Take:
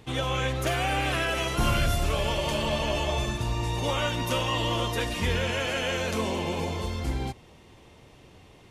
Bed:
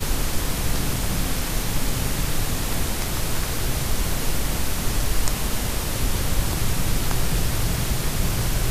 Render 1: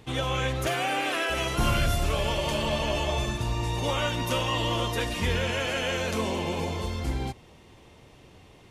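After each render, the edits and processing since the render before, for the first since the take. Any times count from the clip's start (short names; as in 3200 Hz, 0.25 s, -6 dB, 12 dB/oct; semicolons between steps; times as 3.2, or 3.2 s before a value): 0.66–1.29 HPF 130 Hz -> 300 Hz 24 dB/oct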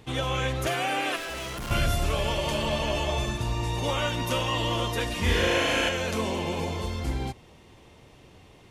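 1.16–1.71 hard clip -33 dBFS; 5.21–5.89 flutter echo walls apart 6.4 m, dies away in 1.2 s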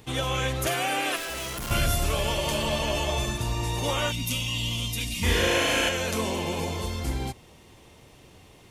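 4.11–5.23 spectral gain 300–2000 Hz -16 dB; high shelf 6800 Hz +10.5 dB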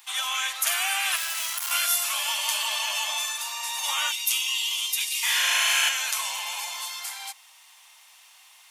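steep high-pass 810 Hz 36 dB/oct; tilt +2.5 dB/oct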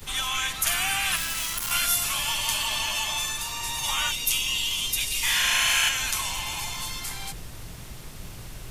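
add bed -17.5 dB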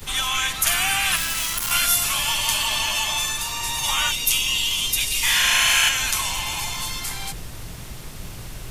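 gain +4.5 dB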